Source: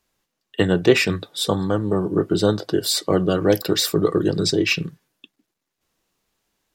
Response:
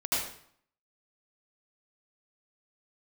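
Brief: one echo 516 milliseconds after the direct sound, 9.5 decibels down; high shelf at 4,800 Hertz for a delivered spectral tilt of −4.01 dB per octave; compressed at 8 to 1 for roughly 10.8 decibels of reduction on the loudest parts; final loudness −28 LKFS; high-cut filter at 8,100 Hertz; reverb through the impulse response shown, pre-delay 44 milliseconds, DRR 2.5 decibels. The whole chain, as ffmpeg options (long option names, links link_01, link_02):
-filter_complex "[0:a]lowpass=8100,highshelf=frequency=4800:gain=8,acompressor=threshold=-20dB:ratio=8,aecho=1:1:516:0.335,asplit=2[link_01][link_02];[1:a]atrim=start_sample=2205,adelay=44[link_03];[link_02][link_03]afir=irnorm=-1:irlink=0,volume=-11.5dB[link_04];[link_01][link_04]amix=inputs=2:normalize=0,volume=-4.5dB"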